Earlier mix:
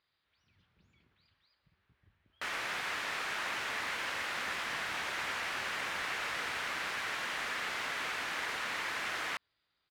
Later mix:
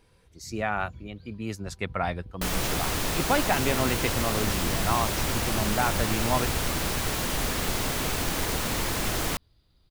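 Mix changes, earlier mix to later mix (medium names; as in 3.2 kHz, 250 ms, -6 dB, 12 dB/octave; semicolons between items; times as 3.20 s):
speech: unmuted; master: remove band-pass filter 1.8 kHz, Q 1.4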